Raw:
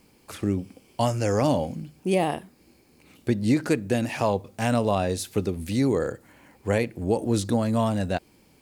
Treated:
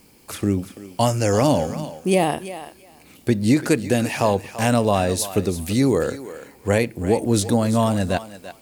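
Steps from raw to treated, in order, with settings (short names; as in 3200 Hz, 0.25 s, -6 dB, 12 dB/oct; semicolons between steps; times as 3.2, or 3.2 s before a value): high shelf 6400 Hz +7 dB; on a send: thinning echo 0.338 s, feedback 17%, high-pass 450 Hz, level -12 dB; on the sum: gain +4.5 dB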